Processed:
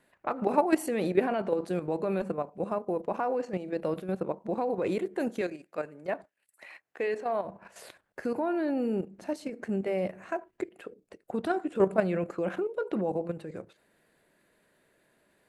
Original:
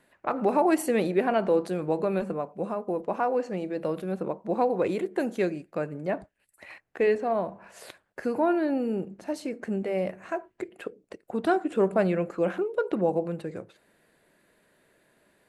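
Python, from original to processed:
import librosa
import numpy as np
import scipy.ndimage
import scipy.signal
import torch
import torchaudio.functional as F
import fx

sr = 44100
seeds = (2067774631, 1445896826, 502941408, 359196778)

y = fx.highpass(x, sr, hz=510.0, slope=6, at=(5.41, 7.45))
y = fx.level_steps(y, sr, step_db=10)
y = y * 10.0 ** (1.5 / 20.0)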